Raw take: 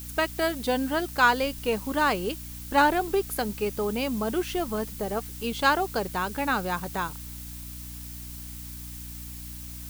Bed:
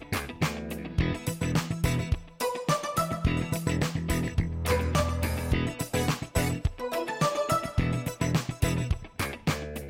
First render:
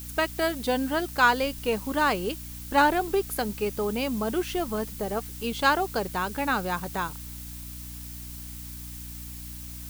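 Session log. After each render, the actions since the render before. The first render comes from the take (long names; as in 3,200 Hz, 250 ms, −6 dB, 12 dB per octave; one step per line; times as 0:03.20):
no processing that can be heard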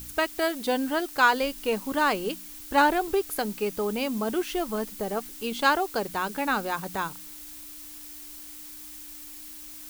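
hum removal 60 Hz, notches 4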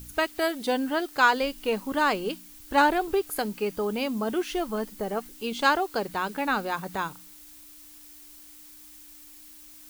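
noise reduction from a noise print 6 dB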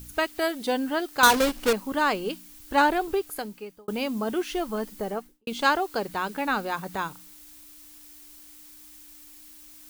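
0:01.23–0:01.73: each half-wave held at its own peak
0:03.07–0:03.88: fade out
0:05.06–0:05.47: fade out and dull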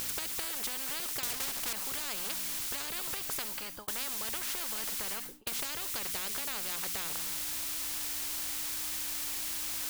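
downward compressor 3 to 1, threshold −29 dBFS, peak gain reduction 12 dB
every bin compressed towards the loudest bin 10 to 1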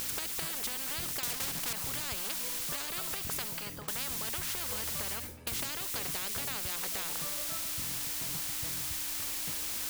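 mix in bed −21 dB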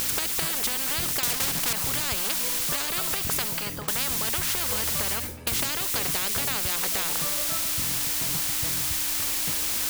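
level +9 dB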